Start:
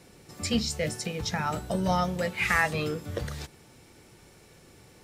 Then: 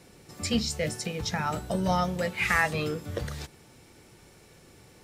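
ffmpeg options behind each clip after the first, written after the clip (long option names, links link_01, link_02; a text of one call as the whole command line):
ffmpeg -i in.wav -af anull out.wav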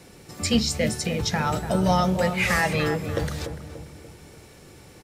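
ffmpeg -i in.wav -filter_complex "[0:a]asplit=2[link_01][link_02];[link_02]adelay=291,lowpass=frequency=1100:poles=1,volume=-8dB,asplit=2[link_03][link_04];[link_04]adelay=291,lowpass=frequency=1100:poles=1,volume=0.51,asplit=2[link_05][link_06];[link_06]adelay=291,lowpass=frequency=1100:poles=1,volume=0.51,asplit=2[link_07][link_08];[link_08]adelay=291,lowpass=frequency=1100:poles=1,volume=0.51,asplit=2[link_09][link_10];[link_10]adelay=291,lowpass=frequency=1100:poles=1,volume=0.51,asplit=2[link_11][link_12];[link_12]adelay=291,lowpass=frequency=1100:poles=1,volume=0.51[link_13];[link_01][link_03][link_05][link_07][link_09][link_11][link_13]amix=inputs=7:normalize=0,acrossover=split=800|2900[link_14][link_15][link_16];[link_15]asoftclip=type=tanh:threshold=-27.5dB[link_17];[link_14][link_17][link_16]amix=inputs=3:normalize=0,volume=5.5dB" out.wav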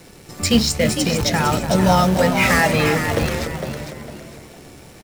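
ffmpeg -i in.wav -filter_complex "[0:a]asplit=2[link_01][link_02];[link_02]acrusher=bits=5:dc=4:mix=0:aa=0.000001,volume=-4dB[link_03];[link_01][link_03]amix=inputs=2:normalize=0,asplit=5[link_04][link_05][link_06][link_07][link_08];[link_05]adelay=455,afreqshift=69,volume=-8dB[link_09];[link_06]adelay=910,afreqshift=138,volume=-18.2dB[link_10];[link_07]adelay=1365,afreqshift=207,volume=-28.3dB[link_11];[link_08]adelay=1820,afreqshift=276,volume=-38.5dB[link_12];[link_04][link_09][link_10][link_11][link_12]amix=inputs=5:normalize=0,volume=1.5dB" out.wav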